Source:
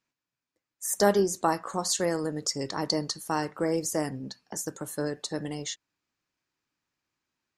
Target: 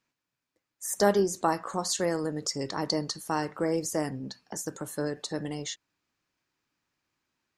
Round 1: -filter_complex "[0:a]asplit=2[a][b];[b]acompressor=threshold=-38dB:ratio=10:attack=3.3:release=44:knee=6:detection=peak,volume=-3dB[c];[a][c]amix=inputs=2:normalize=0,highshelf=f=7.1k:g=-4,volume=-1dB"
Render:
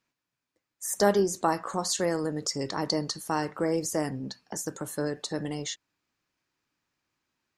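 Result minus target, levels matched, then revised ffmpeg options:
compressor: peak gain reduction -8.5 dB
-filter_complex "[0:a]asplit=2[a][b];[b]acompressor=threshold=-47.5dB:ratio=10:attack=3.3:release=44:knee=6:detection=peak,volume=-3dB[c];[a][c]amix=inputs=2:normalize=0,highshelf=f=7.1k:g=-4,volume=-1dB"

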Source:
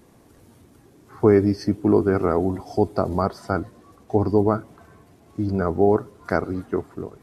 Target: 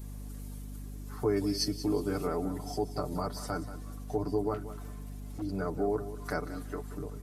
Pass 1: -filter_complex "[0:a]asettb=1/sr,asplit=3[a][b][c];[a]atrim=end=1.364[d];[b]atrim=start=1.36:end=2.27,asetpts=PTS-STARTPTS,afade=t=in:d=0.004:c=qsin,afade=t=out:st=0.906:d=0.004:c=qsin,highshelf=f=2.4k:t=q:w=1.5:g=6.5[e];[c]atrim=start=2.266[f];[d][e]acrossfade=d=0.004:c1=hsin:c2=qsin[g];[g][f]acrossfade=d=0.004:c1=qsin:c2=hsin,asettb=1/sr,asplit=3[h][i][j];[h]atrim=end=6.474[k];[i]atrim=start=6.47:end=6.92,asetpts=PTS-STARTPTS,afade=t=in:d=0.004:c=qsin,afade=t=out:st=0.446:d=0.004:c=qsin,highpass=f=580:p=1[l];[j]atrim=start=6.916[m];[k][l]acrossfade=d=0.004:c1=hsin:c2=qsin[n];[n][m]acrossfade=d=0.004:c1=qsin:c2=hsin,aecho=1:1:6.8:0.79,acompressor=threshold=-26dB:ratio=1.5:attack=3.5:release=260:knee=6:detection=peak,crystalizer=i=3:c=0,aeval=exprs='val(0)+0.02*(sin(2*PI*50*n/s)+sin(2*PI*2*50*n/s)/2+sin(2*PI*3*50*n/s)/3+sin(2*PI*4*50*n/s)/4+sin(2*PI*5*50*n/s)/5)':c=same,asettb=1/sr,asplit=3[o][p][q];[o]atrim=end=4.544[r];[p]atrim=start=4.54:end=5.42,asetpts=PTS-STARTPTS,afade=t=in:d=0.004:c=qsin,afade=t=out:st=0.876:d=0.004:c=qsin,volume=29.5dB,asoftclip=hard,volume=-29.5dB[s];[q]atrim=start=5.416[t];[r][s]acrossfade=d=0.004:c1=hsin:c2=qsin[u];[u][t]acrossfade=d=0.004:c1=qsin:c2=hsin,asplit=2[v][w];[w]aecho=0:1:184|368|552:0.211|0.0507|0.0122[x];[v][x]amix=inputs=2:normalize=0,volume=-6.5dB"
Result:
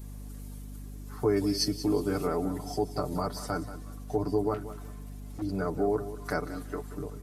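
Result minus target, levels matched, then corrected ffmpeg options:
compressor: peak gain reduction -3 dB
-filter_complex "[0:a]asettb=1/sr,asplit=3[a][b][c];[a]atrim=end=1.364[d];[b]atrim=start=1.36:end=2.27,asetpts=PTS-STARTPTS,afade=t=in:d=0.004:c=qsin,afade=t=out:st=0.906:d=0.004:c=qsin,highshelf=f=2.4k:t=q:w=1.5:g=6.5[e];[c]atrim=start=2.266[f];[d][e]acrossfade=d=0.004:c1=hsin:c2=qsin[g];[g][f]acrossfade=d=0.004:c1=qsin:c2=hsin,asettb=1/sr,asplit=3[h][i][j];[h]atrim=end=6.474[k];[i]atrim=start=6.47:end=6.92,asetpts=PTS-STARTPTS,afade=t=in:d=0.004:c=qsin,afade=t=out:st=0.446:d=0.004:c=qsin,highpass=f=580:p=1[l];[j]atrim=start=6.916[m];[k][l]acrossfade=d=0.004:c1=hsin:c2=qsin[n];[n][m]acrossfade=d=0.004:c1=qsin:c2=hsin,aecho=1:1:6.8:0.79,acompressor=threshold=-34.5dB:ratio=1.5:attack=3.5:release=260:knee=6:detection=peak,crystalizer=i=3:c=0,aeval=exprs='val(0)+0.02*(sin(2*PI*50*n/s)+sin(2*PI*2*50*n/s)/2+sin(2*PI*3*50*n/s)/3+sin(2*PI*4*50*n/s)/4+sin(2*PI*5*50*n/s)/5)':c=same,asettb=1/sr,asplit=3[o][p][q];[o]atrim=end=4.544[r];[p]atrim=start=4.54:end=5.42,asetpts=PTS-STARTPTS,afade=t=in:d=0.004:c=qsin,afade=t=out:st=0.876:d=0.004:c=qsin,volume=29.5dB,asoftclip=hard,volume=-29.5dB[s];[q]atrim=start=5.416[t];[r][s]acrossfade=d=0.004:c1=hsin:c2=qsin[u];[u][t]acrossfade=d=0.004:c1=qsin:c2=hsin,asplit=2[v][w];[w]aecho=0:1:184|368|552:0.211|0.0507|0.0122[x];[v][x]amix=inputs=2:normalize=0,volume=-6.5dB"

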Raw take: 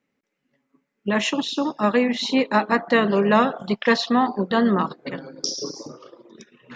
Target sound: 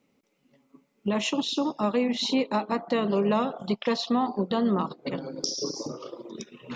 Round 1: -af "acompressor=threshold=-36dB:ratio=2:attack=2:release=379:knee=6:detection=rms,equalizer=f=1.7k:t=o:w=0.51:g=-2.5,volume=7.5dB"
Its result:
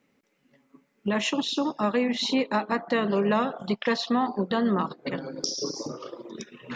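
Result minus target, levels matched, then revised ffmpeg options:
2000 Hz band +5.0 dB
-af "acompressor=threshold=-36dB:ratio=2:attack=2:release=379:knee=6:detection=rms,equalizer=f=1.7k:t=o:w=0.51:g=-12,volume=7.5dB"

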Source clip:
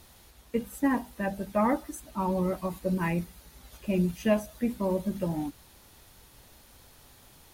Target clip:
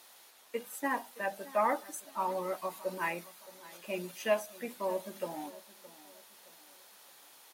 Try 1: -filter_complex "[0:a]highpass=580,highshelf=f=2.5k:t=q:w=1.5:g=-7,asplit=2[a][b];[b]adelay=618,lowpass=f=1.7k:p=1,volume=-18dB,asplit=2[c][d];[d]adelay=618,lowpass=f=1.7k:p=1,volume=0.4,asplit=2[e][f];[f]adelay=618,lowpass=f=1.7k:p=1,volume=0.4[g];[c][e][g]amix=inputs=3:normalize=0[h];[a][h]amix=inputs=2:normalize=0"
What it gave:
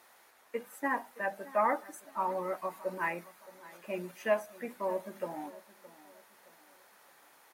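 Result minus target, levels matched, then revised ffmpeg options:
4000 Hz band -8.0 dB
-filter_complex "[0:a]highpass=580,asplit=2[a][b];[b]adelay=618,lowpass=f=1.7k:p=1,volume=-18dB,asplit=2[c][d];[d]adelay=618,lowpass=f=1.7k:p=1,volume=0.4,asplit=2[e][f];[f]adelay=618,lowpass=f=1.7k:p=1,volume=0.4[g];[c][e][g]amix=inputs=3:normalize=0[h];[a][h]amix=inputs=2:normalize=0"

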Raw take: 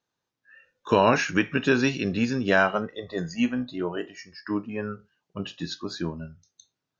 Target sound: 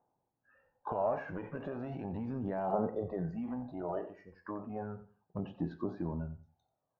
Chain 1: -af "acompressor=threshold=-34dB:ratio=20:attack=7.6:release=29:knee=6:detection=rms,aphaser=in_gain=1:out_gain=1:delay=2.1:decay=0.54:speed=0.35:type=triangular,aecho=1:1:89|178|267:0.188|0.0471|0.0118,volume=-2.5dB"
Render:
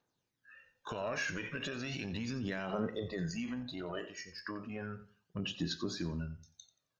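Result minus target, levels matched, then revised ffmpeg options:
1000 Hz band -6.0 dB
-af "acompressor=threshold=-34dB:ratio=20:attack=7.6:release=29:knee=6:detection=rms,lowpass=f=810:t=q:w=4.2,aphaser=in_gain=1:out_gain=1:delay=2.1:decay=0.54:speed=0.35:type=triangular,aecho=1:1:89|178|267:0.188|0.0471|0.0118,volume=-2.5dB"

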